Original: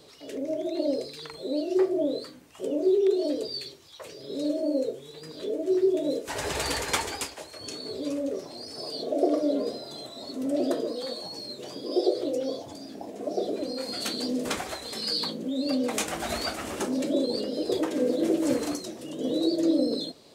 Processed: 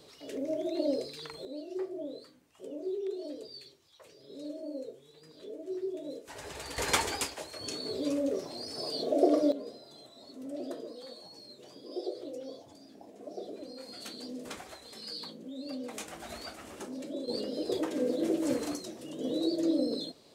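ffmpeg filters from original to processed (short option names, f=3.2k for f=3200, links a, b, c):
-af "asetnsamples=n=441:p=0,asendcmd='1.45 volume volume -13dB;6.78 volume volume -0.5dB;9.52 volume volume -12.5dB;17.28 volume volume -5dB',volume=-3dB"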